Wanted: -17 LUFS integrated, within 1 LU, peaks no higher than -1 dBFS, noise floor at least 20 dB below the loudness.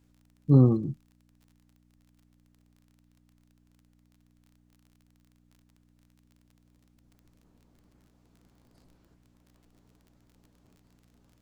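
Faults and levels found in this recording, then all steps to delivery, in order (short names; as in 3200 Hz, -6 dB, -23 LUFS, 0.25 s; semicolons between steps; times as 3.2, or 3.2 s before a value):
ticks 29/s; hum 60 Hz; harmonics up to 300 Hz; hum level -62 dBFS; loudness -23.5 LUFS; peak -8.5 dBFS; loudness target -17.0 LUFS
-> de-click; de-hum 60 Hz, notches 5; gain +6.5 dB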